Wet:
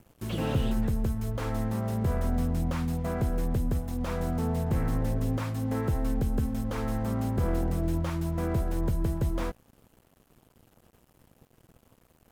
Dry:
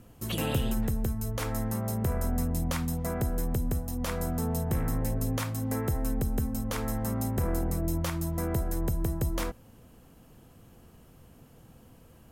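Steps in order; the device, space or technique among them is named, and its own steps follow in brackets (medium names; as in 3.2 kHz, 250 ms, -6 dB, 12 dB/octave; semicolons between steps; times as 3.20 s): early transistor amplifier (crossover distortion -53.5 dBFS; slew-rate limiter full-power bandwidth 25 Hz); trim +2 dB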